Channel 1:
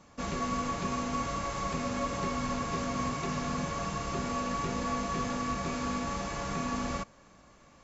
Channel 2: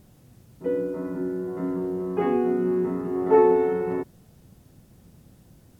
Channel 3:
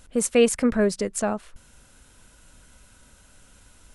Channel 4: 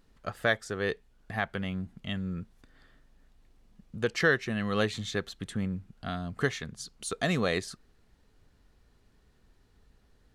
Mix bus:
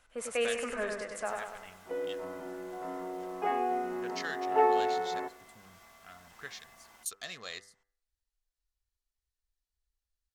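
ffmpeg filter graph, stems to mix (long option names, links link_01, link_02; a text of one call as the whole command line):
ffmpeg -i stem1.wav -i stem2.wav -i stem3.wav -i stem4.wav -filter_complex "[0:a]acompressor=threshold=-34dB:ratio=6,aeval=exprs='val(0)*sin(2*PI*910*n/s)':channel_layout=same,volume=-14.5dB[link_01];[1:a]highpass=340,equalizer=frequency=730:width_type=o:width=0.26:gain=12.5,adelay=1250,volume=0dB,asplit=2[link_02][link_03];[link_03]volume=-19.5dB[link_04];[2:a]acrossover=split=310 2600:gain=0.2 1 0.224[link_05][link_06][link_07];[link_05][link_06][link_07]amix=inputs=3:normalize=0,volume=-3dB,asplit=2[link_08][link_09];[link_09]volume=-4dB[link_10];[3:a]afwtdn=0.00708,bass=frequency=250:gain=-10,treble=frequency=4000:gain=13,volume=-10.5dB[link_11];[link_04][link_10]amix=inputs=2:normalize=0,aecho=0:1:98|196|294|392|490|588|686|784:1|0.55|0.303|0.166|0.0915|0.0503|0.0277|0.0152[link_12];[link_01][link_02][link_08][link_11][link_12]amix=inputs=5:normalize=0,equalizer=frequency=270:width_type=o:width=2.8:gain=-12,bandreject=frequency=99.27:width_type=h:width=4,bandreject=frequency=198.54:width_type=h:width=4,bandreject=frequency=297.81:width_type=h:width=4,bandreject=frequency=397.08:width_type=h:width=4,bandreject=frequency=496.35:width_type=h:width=4,bandreject=frequency=595.62:width_type=h:width=4,bandreject=frequency=694.89:width_type=h:width=4,bandreject=frequency=794.16:width_type=h:width=4,bandreject=frequency=893.43:width_type=h:width=4,bandreject=frequency=992.7:width_type=h:width=4,bandreject=frequency=1091.97:width_type=h:width=4,bandreject=frequency=1191.24:width_type=h:width=4,bandreject=frequency=1290.51:width_type=h:width=4,bandreject=frequency=1389.78:width_type=h:width=4,bandreject=frequency=1489.05:width_type=h:width=4,bandreject=frequency=1588.32:width_type=h:width=4,bandreject=frequency=1687.59:width_type=h:width=4,bandreject=frequency=1786.86:width_type=h:width=4,bandreject=frequency=1886.13:width_type=h:width=4,bandreject=frequency=1985.4:width_type=h:width=4,bandreject=frequency=2084.67:width_type=h:width=4" out.wav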